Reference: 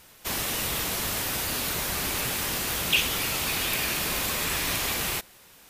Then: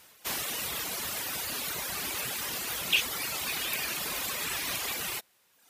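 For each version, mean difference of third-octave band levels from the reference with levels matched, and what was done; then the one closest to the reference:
3.0 dB: low-shelf EQ 400 Hz −5.5 dB
reverb reduction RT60 1.1 s
high-pass filter 97 Hz 6 dB per octave
level −2 dB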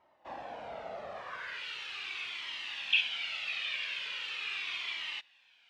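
16.5 dB: low-pass filter 3,700 Hz 12 dB per octave
band-pass filter sweep 650 Hz → 2,900 Hz, 0:01.09–0:01.69
flanger whose copies keep moving one way falling 0.4 Hz
level +3 dB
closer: first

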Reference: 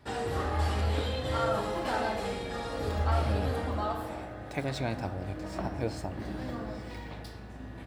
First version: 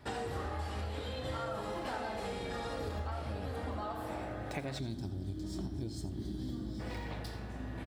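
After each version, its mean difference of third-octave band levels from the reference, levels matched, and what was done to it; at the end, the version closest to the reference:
4.0 dB: gain on a spectral selection 0:04.79–0:06.80, 430–3,000 Hz −16 dB
downward compressor 6 to 1, threshold −37 dBFS, peak gain reduction 13.5 dB
pitch vibrato 6.4 Hz 8.6 cents
on a send: single-tap delay 83 ms −14.5 dB
on the sum: level +1.5 dB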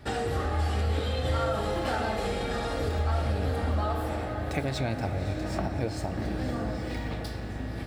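3.0 dB: low-shelf EQ 60 Hz +7.5 dB
downward compressor 2.5 to 1, threshold −36 dBFS, peak gain reduction 10.5 dB
notch filter 990 Hz, Q 7.8
feedback delay with all-pass diffusion 552 ms, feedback 44%, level −10 dB
level +7.5 dB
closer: second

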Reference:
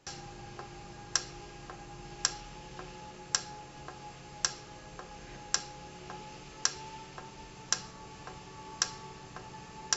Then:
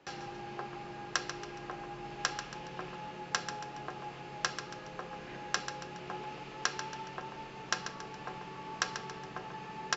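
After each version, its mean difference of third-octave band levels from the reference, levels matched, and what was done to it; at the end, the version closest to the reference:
4.0 dB: three-way crossover with the lows and the highs turned down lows −13 dB, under 160 Hz, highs −18 dB, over 3,900 Hz
repeating echo 139 ms, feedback 42%, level −9.5 dB
level +4 dB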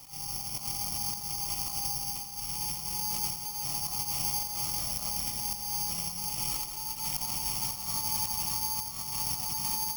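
12.5 dB: compressor whose output falls as the input rises −49 dBFS, ratio −0.5
phaser with its sweep stopped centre 1,600 Hz, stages 6
feedback echo with a low-pass in the loop 86 ms, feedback 80%, low-pass 3,500 Hz, level −8 dB
bad sample-rate conversion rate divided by 8×, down filtered, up zero stuff
level +5 dB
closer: first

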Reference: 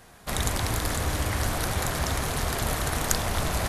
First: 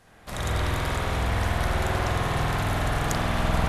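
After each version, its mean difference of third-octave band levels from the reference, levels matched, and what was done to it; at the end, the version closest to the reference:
5.0 dB: high-shelf EQ 11,000 Hz −9 dB
spring reverb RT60 3.4 s, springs 48 ms, chirp 80 ms, DRR −8 dB
level −6 dB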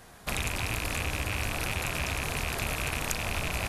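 2.5 dB: loose part that buzzes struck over −31 dBFS, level −14 dBFS
downward compressor 3 to 1, threshold −29 dBFS, peak gain reduction 9 dB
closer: second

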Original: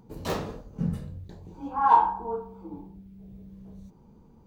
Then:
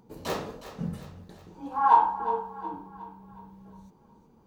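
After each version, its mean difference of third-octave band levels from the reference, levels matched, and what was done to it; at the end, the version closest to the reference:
3.5 dB: low-shelf EQ 150 Hz −11 dB
on a send: feedback echo with a high-pass in the loop 364 ms, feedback 50%, high-pass 420 Hz, level −12 dB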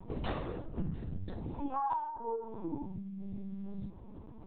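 7.0 dB: downward compressor 6 to 1, threshold −39 dBFS, peak gain reduction 23.5 dB
linear-prediction vocoder at 8 kHz pitch kept
level +5.5 dB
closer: first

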